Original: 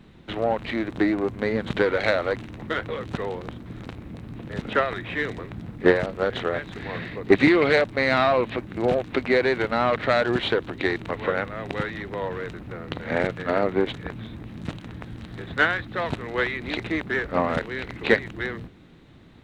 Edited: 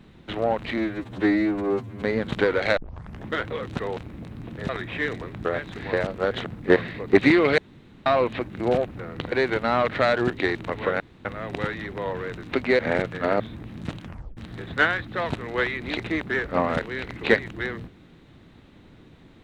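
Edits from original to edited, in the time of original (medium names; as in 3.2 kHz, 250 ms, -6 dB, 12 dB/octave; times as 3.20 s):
0.78–1.40 s: stretch 2×
2.15 s: tape start 0.50 s
3.35–3.89 s: delete
4.61–4.86 s: delete
5.62–5.92 s: swap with 6.45–6.93 s
7.75–8.23 s: room tone
9.04–9.40 s: swap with 12.59–13.04 s
10.38–10.71 s: delete
11.41 s: insert room tone 0.25 s
13.65–14.20 s: delete
14.82 s: tape stop 0.35 s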